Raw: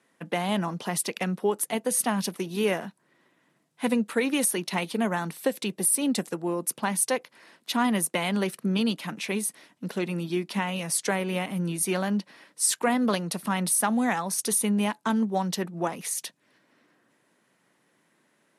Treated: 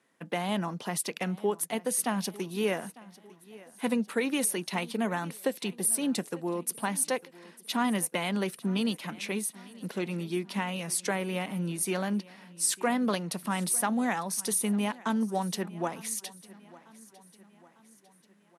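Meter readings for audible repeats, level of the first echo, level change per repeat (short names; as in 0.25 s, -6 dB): 3, -21.0 dB, -6.0 dB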